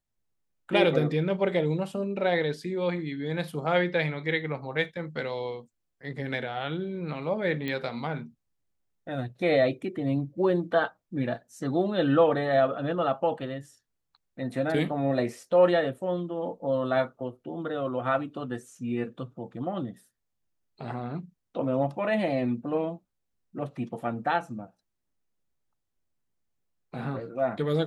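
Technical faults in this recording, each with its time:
0:07.68: click −20 dBFS

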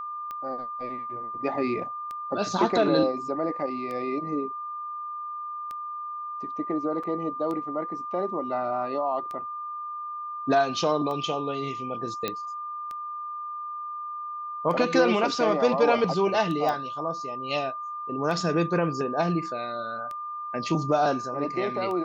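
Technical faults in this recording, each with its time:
scratch tick 33 1/3 rpm −23 dBFS
whistle 1,200 Hz −32 dBFS
0:07.03–0:07.04: drop-out 5.2 ms
0:12.28: click −13 dBFS
0:16.69: click −16 dBFS

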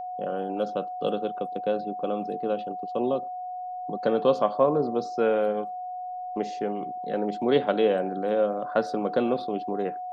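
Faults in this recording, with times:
whistle 730 Hz −32 dBFS

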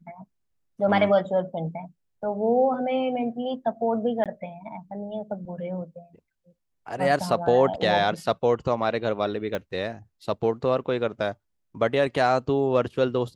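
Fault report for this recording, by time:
0:04.24–0:04.26: drop-out 17 ms
0:09.55: click −16 dBFS

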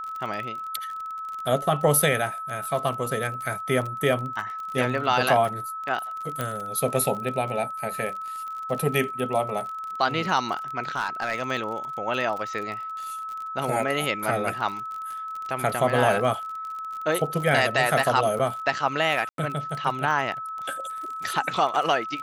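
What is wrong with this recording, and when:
surface crackle 33 per second −31 dBFS
whistle 1,300 Hz −31 dBFS
0:06.41: click
0:10.95–0:11.43: clipping −20 dBFS
0:18.39–0:18.40: drop-out 6.3 ms
0:19.29–0:19.38: drop-out 92 ms

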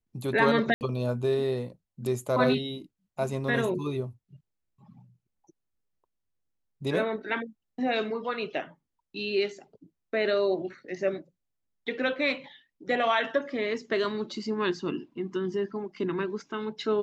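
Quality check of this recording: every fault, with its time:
0:00.74–0:00.81: drop-out 69 ms

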